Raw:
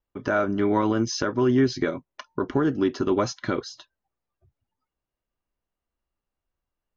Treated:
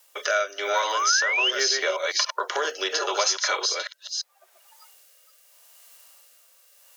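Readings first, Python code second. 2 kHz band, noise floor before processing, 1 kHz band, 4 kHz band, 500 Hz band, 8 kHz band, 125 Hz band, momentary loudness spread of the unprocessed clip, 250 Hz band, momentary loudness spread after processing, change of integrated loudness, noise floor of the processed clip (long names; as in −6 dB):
+9.0 dB, below −85 dBFS, +4.0 dB, +14.0 dB, −3.5 dB, can't be measured, below −40 dB, 10 LU, −21.5 dB, 10 LU, +1.0 dB, −60 dBFS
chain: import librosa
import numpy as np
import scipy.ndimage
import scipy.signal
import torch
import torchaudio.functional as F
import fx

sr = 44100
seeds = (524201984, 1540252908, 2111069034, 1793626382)

y = fx.reverse_delay(x, sr, ms=281, wet_db=-7.0)
y = fx.hpss(y, sr, part='harmonic', gain_db=8)
y = fx.high_shelf(y, sr, hz=2200.0, db=11.0)
y = fx.rotary(y, sr, hz=0.8)
y = scipy.signal.sosfilt(scipy.signal.butter(8, 500.0, 'highpass', fs=sr, output='sos'), y)
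y = fx.rider(y, sr, range_db=5, speed_s=0.5)
y = fx.spec_paint(y, sr, seeds[0], shape='rise', start_s=0.94, length_s=0.57, low_hz=980.0, high_hz=3200.0, level_db=-24.0)
y = fx.high_shelf(y, sr, hz=4800.0, db=9.5)
y = fx.band_squash(y, sr, depth_pct=70)
y = y * 10.0 ** (-1.5 / 20.0)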